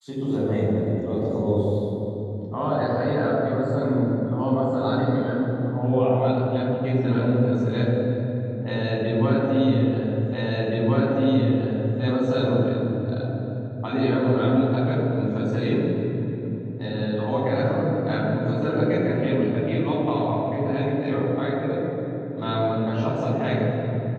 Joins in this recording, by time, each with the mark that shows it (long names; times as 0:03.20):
0:10.34: the same again, the last 1.67 s